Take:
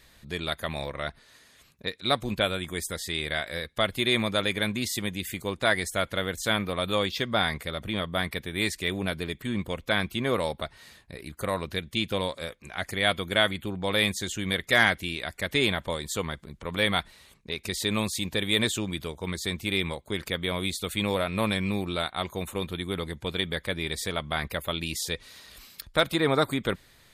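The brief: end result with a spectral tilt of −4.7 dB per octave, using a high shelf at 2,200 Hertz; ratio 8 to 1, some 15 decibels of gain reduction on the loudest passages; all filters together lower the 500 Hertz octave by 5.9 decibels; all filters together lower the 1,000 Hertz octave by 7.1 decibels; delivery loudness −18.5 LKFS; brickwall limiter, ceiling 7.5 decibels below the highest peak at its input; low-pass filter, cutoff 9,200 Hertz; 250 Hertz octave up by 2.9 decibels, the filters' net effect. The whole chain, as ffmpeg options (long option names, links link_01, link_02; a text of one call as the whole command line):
ffmpeg -i in.wav -af "lowpass=9200,equalizer=frequency=250:width_type=o:gain=6,equalizer=frequency=500:width_type=o:gain=-7,equalizer=frequency=1000:width_type=o:gain=-7,highshelf=frequency=2200:gain=-5,acompressor=threshold=-37dB:ratio=8,volume=25dB,alimiter=limit=-7dB:level=0:latency=1" out.wav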